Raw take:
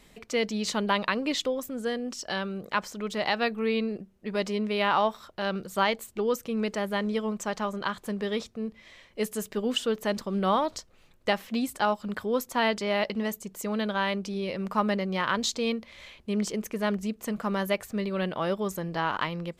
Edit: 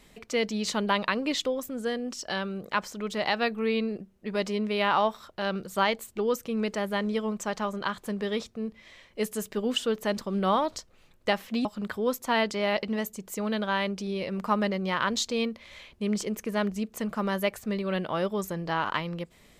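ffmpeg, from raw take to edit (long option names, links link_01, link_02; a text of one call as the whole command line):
ffmpeg -i in.wav -filter_complex "[0:a]asplit=2[link_01][link_02];[link_01]atrim=end=11.652[link_03];[link_02]atrim=start=11.918[link_04];[link_03][link_04]acrossfade=duration=0.004:curve1=hsin:curve2=hsin" out.wav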